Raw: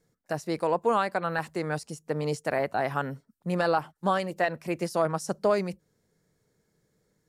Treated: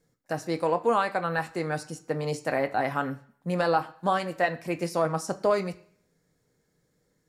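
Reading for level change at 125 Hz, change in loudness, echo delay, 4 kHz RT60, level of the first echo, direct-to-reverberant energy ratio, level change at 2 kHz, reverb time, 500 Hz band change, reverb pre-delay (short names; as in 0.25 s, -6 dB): 0.0 dB, +0.5 dB, none, 0.55 s, none, 6.5 dB, +1.0 dB, 0.55 s, +0.5 dB, 3 ms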